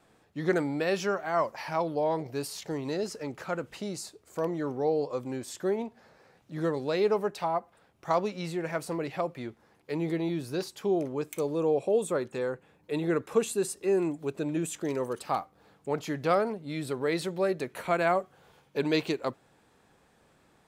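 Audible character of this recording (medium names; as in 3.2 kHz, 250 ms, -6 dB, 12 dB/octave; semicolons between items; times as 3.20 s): noise floor -65 dBFS; spectral tilt -5.0 dB/octave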